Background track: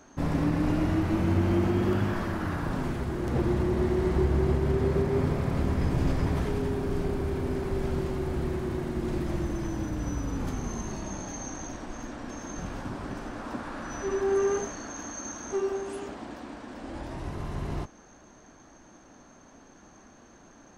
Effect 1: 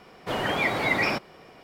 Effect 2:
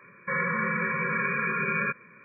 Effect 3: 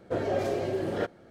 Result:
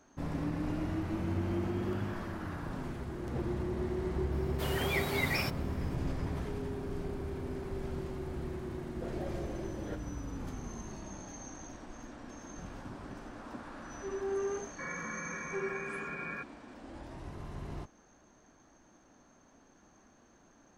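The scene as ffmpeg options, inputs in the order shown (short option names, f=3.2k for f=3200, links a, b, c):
-filter_complex "[0:a]volume=-9dB[a];[1:a]aemphasis=mode=production:type=75fm,atrim=end=1.63,asetpts=PTS-STARTPTS,volume=-11dB,afade=t=in:d=0.004:c=hsin,afade=t=out:st=1.626:d=0.004:c=hsin,adelay=4320[b];[3:a]atrim=end=1.3,asetpts=PTS-STARTPTS,volume=-14dB,afade=t=in:d=0.004:c=hsin,afade=t=out:st=1.296:d=0.004:c=hsin,adelay=392490S[c];[2:a]atrim=end=2.24,asetpts=PTS-STARTPTS,volume=-13dB,afade=t=in:d=0.004:c=hsin,afade=t=out:st=2.236:d=0.004:c=hsin,adelay=14510[d];[a][b][c][d]amix=inputs=4:normalize=0"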